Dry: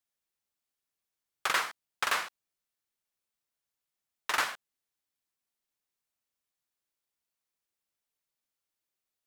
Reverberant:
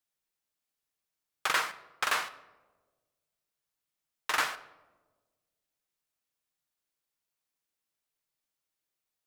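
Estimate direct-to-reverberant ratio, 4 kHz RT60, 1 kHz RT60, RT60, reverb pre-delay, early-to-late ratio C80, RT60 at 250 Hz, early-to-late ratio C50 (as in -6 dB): 10.0 dB, 0.65 s, 1.1 s, 1.3 s, 6 ms, 17.5 dB, 1.6 s, 16.0 dB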